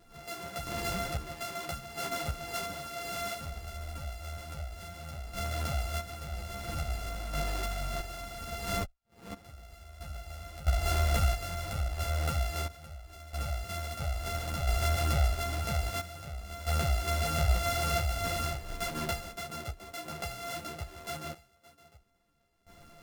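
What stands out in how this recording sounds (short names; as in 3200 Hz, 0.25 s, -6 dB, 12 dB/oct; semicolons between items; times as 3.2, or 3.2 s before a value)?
a buzz of ramps at a fixed pitch in blocks of 64 samples; random-step tremolo 1.5 Hz, depth 95%; a shimmering, thickened sound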